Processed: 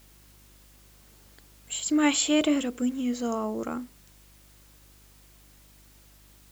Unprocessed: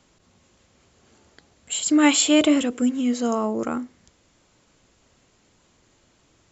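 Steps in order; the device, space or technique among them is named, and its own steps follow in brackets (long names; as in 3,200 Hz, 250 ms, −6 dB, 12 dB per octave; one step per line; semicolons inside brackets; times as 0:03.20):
video cassette with head-switching buzz (hum with harmonics 50 Hz, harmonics 7, −52 dBFS −7 dB per octave; white noise bed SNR 28 dB)
level −6 dB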